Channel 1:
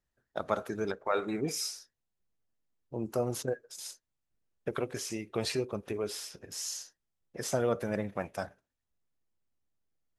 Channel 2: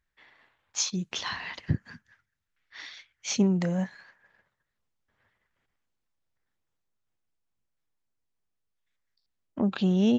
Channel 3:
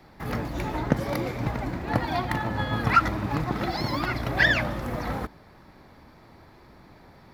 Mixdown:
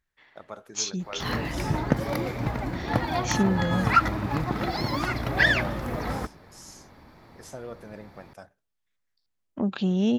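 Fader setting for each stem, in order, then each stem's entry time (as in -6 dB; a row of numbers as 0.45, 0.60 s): -10.0, -0.5, 0.0 dB; 0.00, 0.00, 1.00 s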